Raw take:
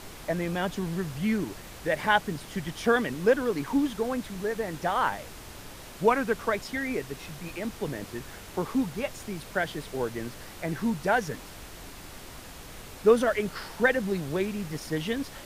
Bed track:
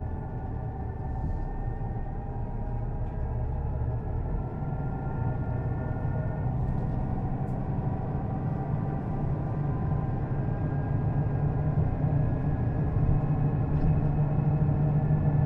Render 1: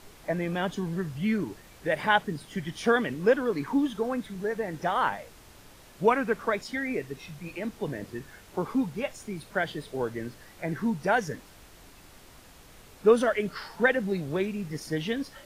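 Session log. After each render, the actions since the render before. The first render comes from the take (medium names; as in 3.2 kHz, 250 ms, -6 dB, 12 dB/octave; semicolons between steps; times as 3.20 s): noise print and reduce 8 dB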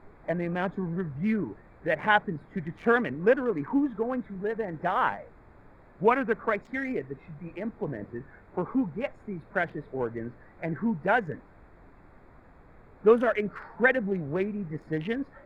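local Wiener filter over 15 samples; resonant high shelf 3.4 kHz -10 dB, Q 1.5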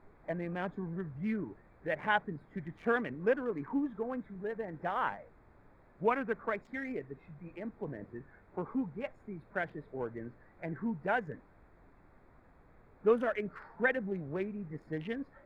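trim -7.5 dB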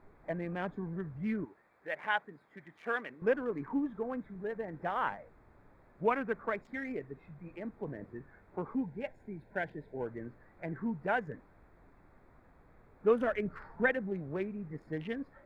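1.45–3.22 s: high-pass 870 Hz 6 dB/octave; 8.75–10.06 s: Butterworth band-stop 1.2 kHz, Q 2.9; 13.21–13.91 s: bass shelf 170 Hz +9 dB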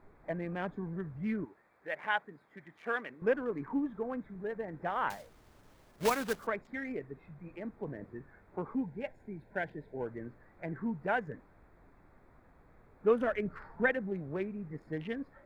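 5.10–6.47 s: block-companded coder 3-bit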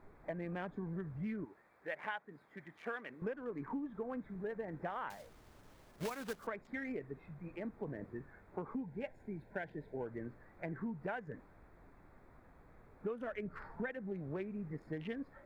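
compression 12:1, threshold -37 dBFS, peak gain reduction 16 dB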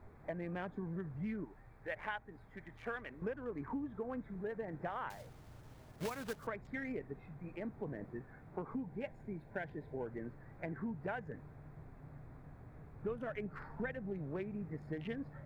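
add bed track -28 dB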